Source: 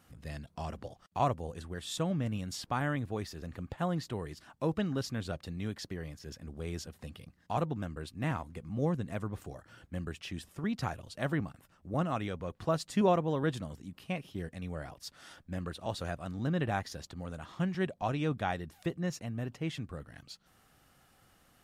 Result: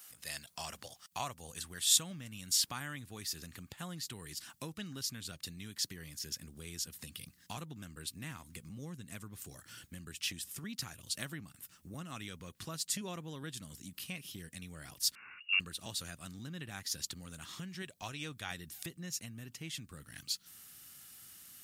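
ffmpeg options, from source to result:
-filter_complex "[0:a]asettb=1/sr,asplit=3[s0][s1][s2];[s0]atrim=end=15.154[s3];[s1]atrim=start=15.15:end=15.6,asetpts=PTS-STARTPTS,afade=t=in:d=0.004:c=qsin,afade=t=out:st=0.446:d=0.004:c=qsin,lowpass=f=2500:t=q:w=0.5098,lowpass=f=2500:t=q:w=0.6013,lowpass=f=2500:t=q:w=0.9,lowpass=f=2500:t=q:w=2.563,afreqshift=-2900[s4];[s2]atrim=start=15.596[s5];[s3][s4]acrossfade=d=0.004:c1=hsin:c2=qsin[s6];[s6][s5]acrossfade=d=0.004:c1=qsin:c2=hsin,asettb=1/sr,asplit=3[s7][s8][s9];[s7]atrim=end=17.824[s10];[s8]atrim=start=17.82:end=18.51,asetpts=PTS-STARTPTS,afade=t=in:d=0.004:c=qsin,afade=t=out:st=0.686:d=0.004:c=qsin,equalizer=f=200:w=1.2:g=-7.5[s11];[s9]atrim=start=18.506[s12];[s10][s11]acrossfade=d=0.004:c1=hsin:c2=qsin[s13];[s13][s12]acrossfade=d=0.004:c1=qsin:c2=hsin,asubboost=boost=10.5:cutoff=200,acompressor=threshold=0.0355:ratio=4,aderivative,volume=6.31"

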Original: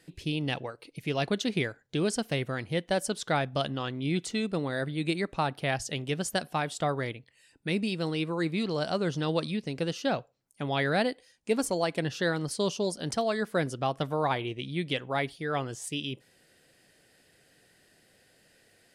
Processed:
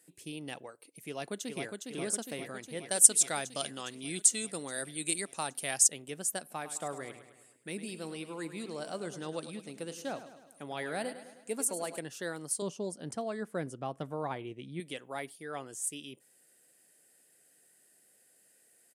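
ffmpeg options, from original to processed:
-filter_complex "[0:a]asplit=2[s0][s1];[s1]afade=t=in:st=1.08:d=0.01,afade=t=out:st=1.85:d=0.01,aecho=0:1:410|820|1230|1640|2050|2460|2870|3280|3690|4100|4510|4920:0.630957|0.44167|0.309169|0.216418|0.151493|0.106045|0.0742315|0.0519621|0.0363734|0.0254614|0.017823|0.0124761[s2];[s0][s2]amix=inputs=2:normalize=0,asettb=1/sr,asplit=3[s3][s4][s5];[s3]atrim=end=2.914[s6];[s4]atrim=start=2.91:end=5.88,asetpts=PTS-STARTPTS,afade=t=in:d=0.004:c=qsin,afade=t=out:st=2.966:d=0.004:c=qsin,equalizer=f=7700:w=0.41:g=14.5[s7];[s5]atrim=start=5.876[s8];[s6][s7]acrossfade=d=0.004:c1=hsin:c2=qsin[s9];[s9][s8]acrossfade=d=0.004:c1=qsin:c2=hsin,asettb=1/sr,asplit=3[s10][s11][s12];[s10]atrim=end=6.404[s13];[s11]atrim=start=6.4:end=11.99,asetpts=PTS-STARTPTS,afade=t=in:d=0.004:c=qsin,afade=t=out:st=5.586:d=0.004:c=qsin,aecho=1:1:104|208|312|416|520|624:0.251|0.141|0.0788|0.0441|0.0247|0.0138,atrim=end_sample=246519[s14];[s12]atrim=start=11.986[s15];[s13][s14]acrossfade=d=0.004:c1=hsin:c2=qsin[s16];[s16][s15]acrossfade=d=0.004:c1=qsin:c2=hsin,asettb=1/sr,asplit=3[s17][s18][s19];[s17]atrim=end=12.624[s20];[s18]atrim=start=12.62:end=14.8,asetpts=PTS-STARTPTS,afade=t=in:d=0.004:c=qsin,afade=t=out:st=2.176:d=0.004:c=qsin,aemphasis=mode=reproduction:type=bsi[s21];[s19]atrim=start=14.796[s22];[s20][s21]acrossfade=d=0.004:c1=hsin:c2=qsin[s23];[s23][s22]acrossfade=d=0.004:c1=qsin:c2=hsin,highpass=210,highshelf=f=6200:t=q:w=1.5:g=12.5,volume=0.355"

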